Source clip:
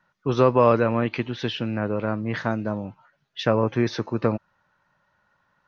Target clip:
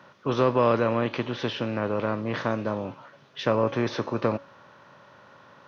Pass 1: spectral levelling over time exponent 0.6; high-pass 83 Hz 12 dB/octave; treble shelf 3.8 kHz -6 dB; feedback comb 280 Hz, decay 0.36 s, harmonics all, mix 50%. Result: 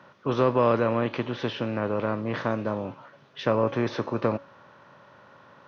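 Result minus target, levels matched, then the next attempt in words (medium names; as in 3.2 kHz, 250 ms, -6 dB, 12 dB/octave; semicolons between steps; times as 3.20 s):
8 kHz band -4.0 dB
spectral levelling over time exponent 0.6; high-pass 83 Hz 12 dB/octave; feedback comb 280 Hz, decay 0.36 s, harmonics all, mix 50%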